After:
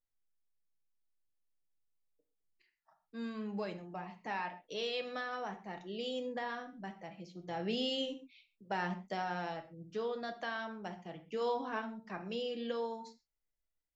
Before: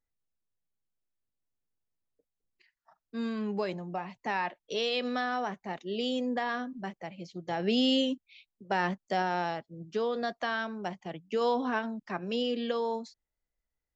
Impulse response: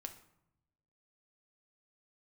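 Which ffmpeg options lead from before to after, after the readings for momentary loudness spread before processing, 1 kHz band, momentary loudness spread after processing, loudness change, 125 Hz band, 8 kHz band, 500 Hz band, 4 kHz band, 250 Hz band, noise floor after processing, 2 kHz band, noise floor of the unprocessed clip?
11 LU, −7.5 dB, 11 LU, −7.5 dB, −6.0 dB, can't be measured, −6.5 dB, −7.0 dB, −9.5 dB, below −85 dBFS, −7.0 dB, below −85 dBFS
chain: -filter_complex "[1:a]atrim=start_sample=2205,atrim=end_sample=6174[link_01];[0:a][link_01]afir=irnorm=-1:irlink=0,volume=-3dB"

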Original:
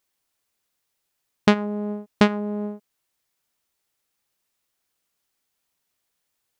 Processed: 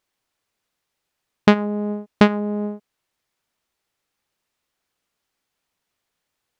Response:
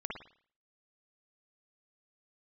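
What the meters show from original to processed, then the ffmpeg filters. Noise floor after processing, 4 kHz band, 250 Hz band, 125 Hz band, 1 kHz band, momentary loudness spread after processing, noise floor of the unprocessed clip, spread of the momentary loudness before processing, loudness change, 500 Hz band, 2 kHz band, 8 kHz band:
−80 dBFS, +1.0 dB, +3.5 dB, +3.5 dB, +3.0 dB, 11 LU, −78 dBFS, 12 LU, +3.5 dB, +3.5 dB, +2.5 dB, can't be measured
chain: -af "lowpass=frequency=3800:poles=1,volume=3.5dB"

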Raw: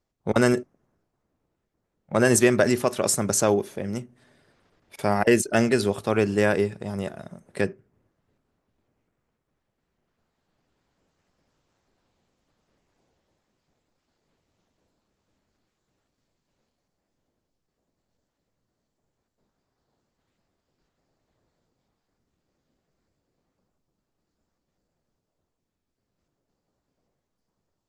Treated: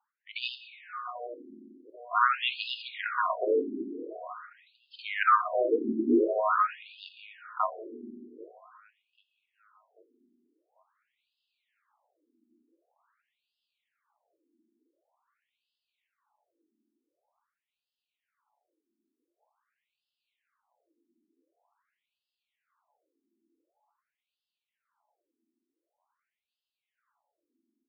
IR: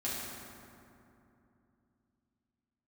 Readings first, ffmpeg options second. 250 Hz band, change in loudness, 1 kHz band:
−8.5 dB, −5.5 dB, +3.0 dB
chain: -filter_complex "[0:a]aeval=exprs='val(0)*sin(2*PI*1200*n/s)':channel_layout=same,asubboost=boost=7.5:cutoff=120,afreqshift=-350,asplit=2[link_01][link_02];[link_02]adelay=790,lowpass=frequency=2900:poles=1,volume=-17.5dB,asplit=2[link_03][link_04];[link_04]adelay=790,lowpass=frequency=2900:poles=1,volume=0.47,asplit=2[link_05][link_06];[link_06]adelay=790,lowpass=frequency=2900:poles=1,volume=0.47,asplit=2[link_07][link_08];[link_08]adelay=790,lowpass=frequency=2900:poles=1,volume=0.47[link_09];[link_01][link_03][link_05][link_07][link_09]amix=inputs=5:normalize=0,asplit=2[link_10][link_11];[1:a]atrim=start_sample=2205[link_12];[link_11][link_12]afir=irnorm=-1:irlink=0,volume=-10dB[link_13];[link_10][link_13]amix=inputs=2:normalize=0,afftfilt=real='re*between(b*sr/1024,280*pow(3700/280,0.5+0.5*sin(2*PI*0.46*pts/sr))/1.41,280*pow(3700/280,0.5+0.5*sin(2*PI*0.46*pts/sr))*1.41)':imag='im*between(b*sr/1024,280*pow(3700/280,0.5+0.5*sin(2*PI*0.46*pts/sr))/1.41,280*pow(3700/280,0.5+0.5*sin(2*PI*0.46*pts/sr))*1.41)':win_size=1024:overlap=0.75,volume=2dB"

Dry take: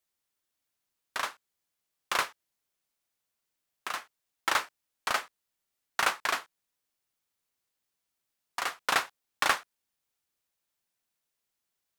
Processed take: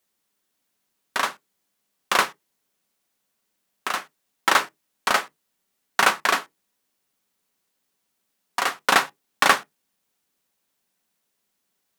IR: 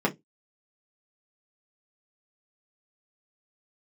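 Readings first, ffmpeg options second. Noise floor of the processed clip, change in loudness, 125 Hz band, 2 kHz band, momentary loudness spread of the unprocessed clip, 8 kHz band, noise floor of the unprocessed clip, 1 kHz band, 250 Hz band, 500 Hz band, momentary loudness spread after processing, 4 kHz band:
−76 dBFS, +8.5 dB, +10.0 dB, +8.5 dB, 12 LU, +8.0 dB, −84 dBFS, +9.0 dB, +12.5 dB, +10.0 dB, 12 LU, +8.0 dB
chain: -filter_complex "[0:a]asplit=2[link_01][link_02];[1:a]atrim=start_sample=2205,lowshelf=frequency=160:gain=11.5[link_03];[link_02][link_03]afir=irnorm=-1:irlink=0,volume=-21.5dB[link_04];[link_01][link_04]amix=inputs=2:normalize=0,volume=7.5dB"

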